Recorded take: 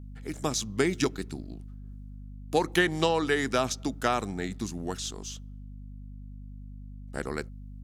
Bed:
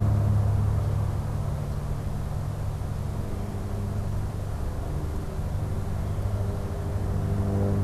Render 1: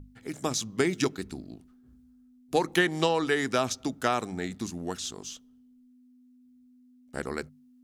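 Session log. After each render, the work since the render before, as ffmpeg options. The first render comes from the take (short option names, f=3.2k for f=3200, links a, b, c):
-af "bandreject=f=50:t=h:w=6,bandreject=f=100:t=h:w=6,bandreject=f=150:t=h:w=6,bandreject=f=200:t=h:w=6"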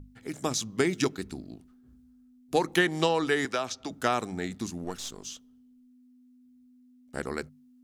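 -filter_complex "[0:a]asettb=1/sr,asplit=3[a][b][c];[a]atrim=end=3.454[d];[b]atrim=start=3.45:end=3.91,asetpts=PTS-STARTPTS,afade=t=in:d=0.004:c=qsin,afade=t=out:st=0.456:d=0.004:c=qsin,acrossover=split=390|6400[e][f][g];[e]acompressor=threshold=-44dB:ratio=4[h];[f]acompressor=threshold=-26dB:ratio=4[i];[g]acompressor=threshold=-55dB:ratio=4[j];[h][i][j]amix=inputs=3:normalize=0[k];[c]atrim=start=3.906[l];[d][k]acrossfade=d=0.004:c1=hsin:c2=qsin[m];[m][l]acrossfade=d=0.004:c1=qsin:c2=hsin,asettb=1/sr,asplit=3[n][o][p];[n]atrim=end=4.844[q];[o]atrim=start=4.84:end=5.25,asetpts=PTS-STARTPTS,afade=t=in:d=0.004:c=qsin,afade=t=out:st=0.406:d=0.004:c=qsin,aeval=exprs='if(lt(val(0),0),0.447*val(0),val(0))':c=same[r];[p]atrim=start=5.246[s];[q][r]acrossfade=d=0.004:c1=hsin:c2=qsin[t];[t][s]acrossfade=d=0.004:c1=qsin:c2=hsin"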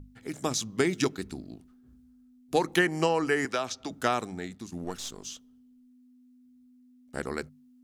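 -filter_complex "[0:a]asettb=1/sr,asplit=3[a][b][c];[a]atrim=end=2.794[d];[b]atrim=start=2.79:end=3.49,asetpts=PTS-STARTPTS,afade=t=in:d=0.004:c=qsin,afade=t=out:st=0.696:d=0.004:c=qsin,asuperstop=centerf=3600:order=4:qfactor=2.7[e];[c]atrim=start=3.486[f];[d][e]acrossfade=d=0.004:c1=hsin:c2=qsin[g];[g][f]acrossfade=d=0.004:c1=qsin:c2=hsin,asplit=2[h][i];[h]atrim=end=4.72,asetpts=PTS-STARTPTS,afade=t=out:st=4.08:d=0.64:silence=0.334965[j];[i]atrim=start=4.72,asetpts=PTS-STARTPTS,afade=t=in:d=0.004:c=hsin:silence=0.334965[k];[j][k]concat=n=2:v=0:a=1"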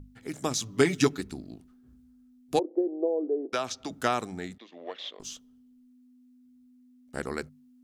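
-filter_complex "[0:a]asettb=1/sr,asplit=3[a][b][c];[a]atrim=end=0.634[d];[b]atrim=start=0.63:end=1.21,asetpts=PTS-STARTPTS,afade=t=in:d=0.004:c=qsin,afade=t=out:st=0.576:d=0.004:c=qsin,aecho=1:1:7:0.85,atrim=end_sample=25578[e];[c]atrim=start=1.206[f];[d][e]acrossfade=d=0.004:c1=hsin:c2=qsin[g];[g][f]acrossfade=d=0.004:c1=qsin:c2=hsin,asettb=1/sr,asplit=3[h][i][j];[h]atrim=end=2.594[k];[i]atrim=start=2.59:end=3.53,asetpts=PTS-STARTPTS,afade=t=in:d=0.004:c=qsin,afade=t=out:st=0.936:d=0.004:c=qsin,asuperpass=centerf=440:order=8:qfactor=1.2[l];[j]atrim=start=3.526[m];[k][l]acrossfade=d=0.004:c1=hsin:c2=qsin[n];[n][m]acrossfade=d=0.004:c1=qsin:c2=hsin,asettb=1/sr,asplit=3[o][p][q];[o]atrim=end=4.584[r];[p]atrim=start=4.58:end=5.2,asetpts=PTS-STARTPTS,afade=t=in:d=0.004:c=qsin,afade=t=out:st=0.616:d=0.004:c=qsin,highpass=f=360:w=0.5412,highpass=f=360:w=1.3066,equalizer=f=370:t=q:w=4:g=-6,equalizer=f=570:t=q:w=4:g=8,equalizer=f=870:t=q:w=4:g=-4,equalizer=f=1.4k:t=q:w=4:g=-8,equalizer=f=2k:t=q:w=4:g=7,equalizer=f=3.4k:t=q:w=4:g=9,lowpass=f=3.5k:w=0.5412,lowpass=f=3.5k:w=1.3066[s];[q]atrim=start=5.196[t];[r][s]acrossfade=d=0.004:c1=hsin:c2=qsin[u];[u][t]acrossfade=d=0.004:c1=qsin:c2=hsin"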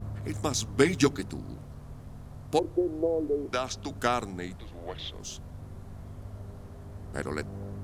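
-filter_complex "[1:a]volume=-14.5dB[a];[0:a][a]amix=inputs=2:normalize=0"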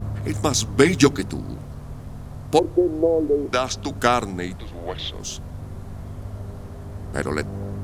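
-af "volume=8.5dB,alimiter=limit=-1dB:level=0:latency=1"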